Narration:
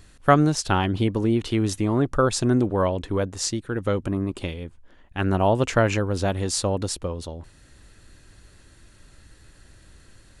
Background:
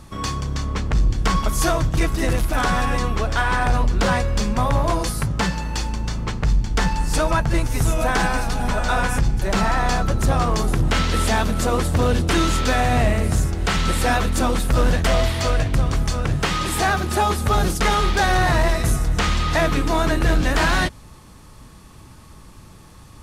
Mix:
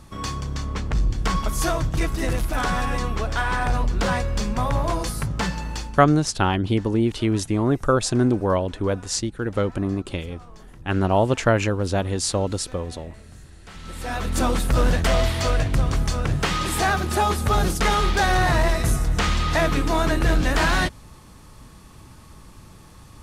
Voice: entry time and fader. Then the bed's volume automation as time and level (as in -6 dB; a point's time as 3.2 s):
5.70 s, +1.0 dB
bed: 5.7 s -3.5 dB
6.47 s -26 dB
13.58 s -26 dB
14.39 s -1.5 dB